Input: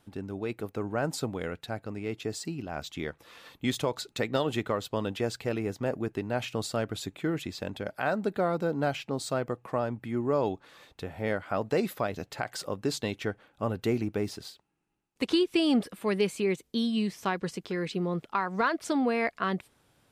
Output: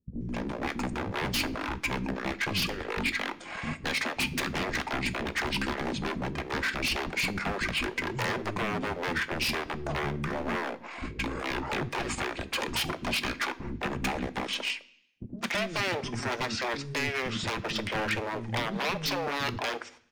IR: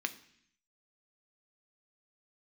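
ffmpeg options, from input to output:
-filter_complex "[0:a]lowshelf=frequency=220:gain=-2,agate=range=-20dB:threshold=-54dB:ratio=16:detection=peak,acompressor=threshold=-32dB:ratio=5,asetrate=26990,aresample=44100,atempo=1.63392,aeval=exprs='0.0133*(abs(mod(val(0)/0.0133+3,4)-2)-1)':channel_layout=same,acrossover=split=320[link_01][link_02];[link_02]adelay=210[link_03];[link_01][link_03]amix=inputs=2:normalize=0,asplit=2[link_04][link_05];[1:a]atrim=start_sample=2205[link_06];[link_05][link_06]afir=irnorm=-1:irlink=0,volume=2dB[link_07];[link_04][link_07]amix=inputs=2:normalize=0,volume=6.5dB"

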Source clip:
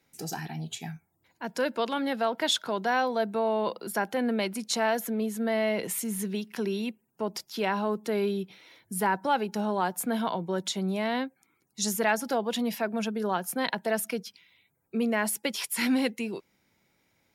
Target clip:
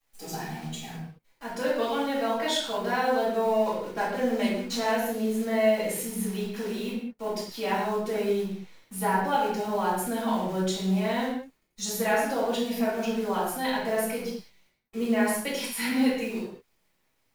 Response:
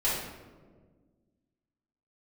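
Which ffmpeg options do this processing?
-filter_complex "[0:a]asettb=1/sr,asplit=3[link_01][link_02][link_03];[link_01]atrim=end=3.454[link_04];[link_02]atrim=start=3.45:end=4.91,asetpts=PTS-STARTPTS,afade=type=in:duration=0.004:curve=qsin,afade=type=out:start_time=1.456:duration=0.004:curve=qsin,adynamicsmooth=sensitivity=8:basefreq=770[link_05];[link_03]atrim=start=4.906[link_06];[link_04][link_05]acrossfade=duration=0.004:curve1=hsin:curve2=qsin[link_07];[link_07][link_06]acrossfade=duration=0.004:curve1=qsin:curve2=hsin,acrusher=bits=8:dc=4:mix=0:aa=0.000001[link_08];[1:a]atrim=start_sample=2205,afade=type=out:start_time=0.27:duration=0.01,atrim=end_sample=12348[link_09];[link_08][link_09]afir=irnorm=-1:irlink=0,volume=-9dB"

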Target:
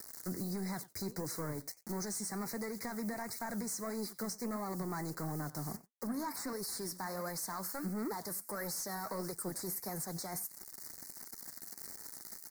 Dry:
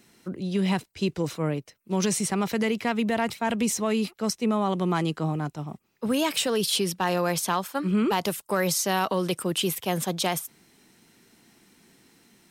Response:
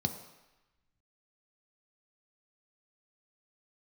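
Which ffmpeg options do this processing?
-filter_complex "[0:a]highshelf=frequency=3900:gain=-9,acrusher=bits=8:mix=0:aa=0.000001,crystalizer=i=6.5:c=0,volume=18dB,asoftclip=hard,volume=-18dB,asettb=1/sr,asplit=3[link_01][link_02][link_03];[link_01]atrim=end=6.074[link_04];[link_02]atrim=start=6.07:end=6.53,asetpts=PTS-STARTPTS,afade=type=in:duration=0.004:curve=qsin,afade=type=out:start_time=0.456:duration=0.004:curve=qsin,equalizer=frequency=250:width_type=o:width=1:gain=10,equalizer=frequency=500:width_type=o:width=1:gain=-6,equalizer=frequency=1000:width_type=o:width=1:gain=11,equalizer=frequency=8000:width_type=o:width=1:gain=-4[link_05];[link_03]atrim=start=6.526[link_06];[link_04][link_05]acrossfade=duration=0.004:curve1=hsin:curve2=qsin[link_07];[link_07][link_06]acrossfade=duration=0.004:curve1=qsin:curve2=hsin,acompressor=threshold=-35dB:ratio=10,aecho=1:1:92:0.075,asoftclip=type=tanh:threshold=-35.5dB,asuperstop=centerf=3000:order=8:qfactor=1.3,flanger=delay=2.2:depth=9:regen=73:speed=1.5:shape=sinusoidal,alimiter=level_in=15dB:limit=-24dB:level=0:latency=1:release=162,volume=-15dB,volume=8dB"

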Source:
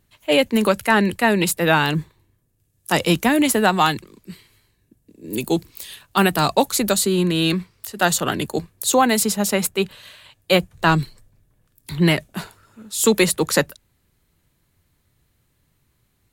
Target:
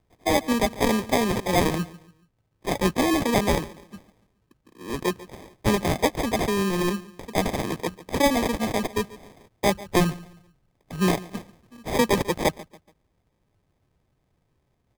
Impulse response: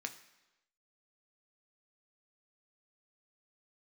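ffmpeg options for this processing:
-filter_complex "[0:a]asplit=2[link_01][link_02];[link_02]adelay=155,lowpass=frequency=1400:poles=1,volume=-18dB,asplit=2[link_03][link_04];[link_04]adelay=155,lowpass=frequency=1400:poles=1,volume=0.39,asplit=2[link_05][link_06];[link_06]adelay=155,lowpass=frequency=1400:poles=1,volume=0.39[link_07];[link_01][link_03][link_05][link_07]amix=inputs=4:normalize=0,acrusher=samples=34:mix=1:aa=0.000001,asetrate=48069,aresample=44100,volume=-5dB"

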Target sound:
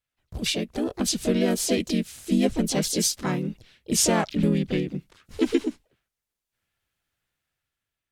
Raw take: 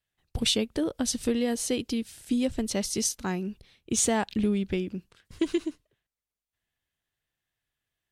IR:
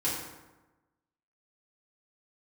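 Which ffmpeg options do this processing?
-filter_complex "[0:a]asplit=4[link_01][link_02][link_03][link_04];[link_02]asetrate=35002,aresample=44100,atempo=1.25992,volume=-2dB[link_05];[link_03]asetrate=52444,aresample=44100,atempo=0.840896,volume=-17dB[link_06];[link_04]asetrate=58866,aresample=44100,atempo=0.749154,volume=-7dB[link_07];[link_01][link_05][link_06][link_07]amix=inputs=4:normalize=0,dynaudnorm=framelen=370:gausssize=5:maxgain=8dB,volume=-5dB"

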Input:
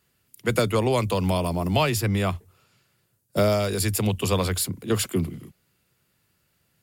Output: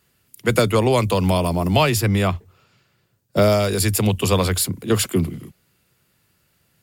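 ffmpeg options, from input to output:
ffmpeg -i in.wav -filter_complex "[0:a]asettb=1/sr,asplit=3[link_01][link_02][link_03];[link_01]atrim=end=2.274[link_04];[link_02]atrim=start=2.27:end=3.42,asetpts=PTS-STARTPTS,afade=type=in:duration=0.004:curve=qsin,afade=type=out:start_time=1.146:duration=0.004:curve=qsin,equalizer=frequency=11000:width=0.88:gain=-12[link_05];[link_03]atrim=start=3.416[link_06];[link_04][link_05]acrossfade=duration=0.004:curve1=hsin:curve2=qsin[link_07];[link_07][link_06]acrossfade=duration=0.004:curve1=qsin:curve2=hsin,volume=5dB" out.wav

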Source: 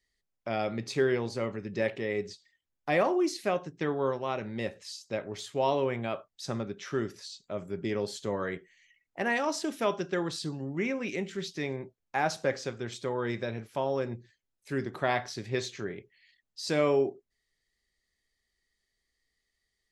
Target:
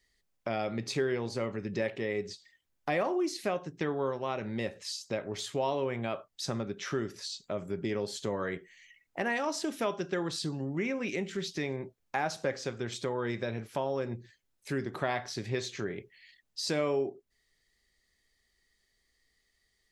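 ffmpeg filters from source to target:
ffmpeg -i in.wav -af "acompressor=threshold=-41dB:ratio=2,volume=6dB" out.wav

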